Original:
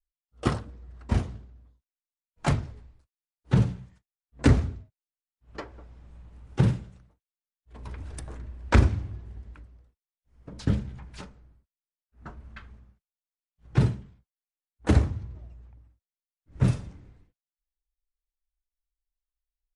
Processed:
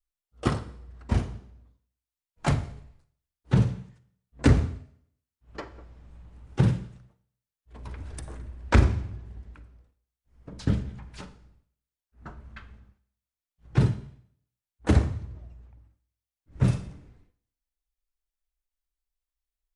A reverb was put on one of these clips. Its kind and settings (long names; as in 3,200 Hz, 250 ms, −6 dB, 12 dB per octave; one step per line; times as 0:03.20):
four-comb reverb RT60 0.64 s, DRR 13.5 dB